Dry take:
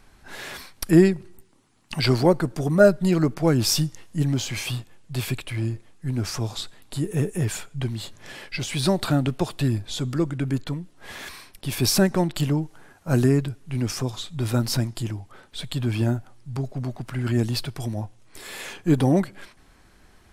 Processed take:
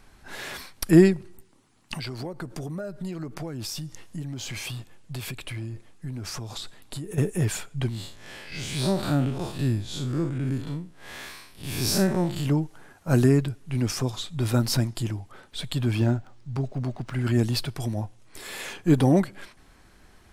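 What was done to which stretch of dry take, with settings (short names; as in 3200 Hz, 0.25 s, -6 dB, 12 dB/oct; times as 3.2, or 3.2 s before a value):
1.96–7.18 compressor 10:1, threshold -30 dBFS
7.89–12.46 time blur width 0.108 s
15.99–17.12 decimation joined by straight lines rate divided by 3×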